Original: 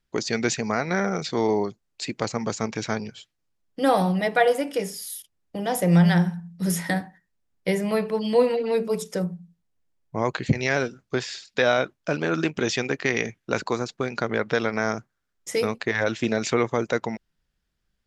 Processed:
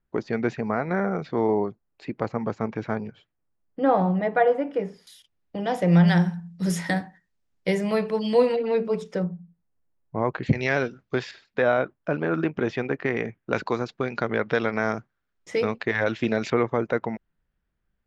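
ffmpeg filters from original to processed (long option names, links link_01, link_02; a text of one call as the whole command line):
ffmpeg -i in.wav -af "asetnsamples=nb_out_samples=441:pad=0,asendcmd='5.07 lowpass f 3800;6.08 lowpass f 7400;8.56 lowpass f 3100;9.25 lowpass f 1600;10.43 lowpass f 3500;11.31 lowpass f 1700;13.53 lowpass f 3400;16.5 lowpass f 2000',lowpass=1500" out.wav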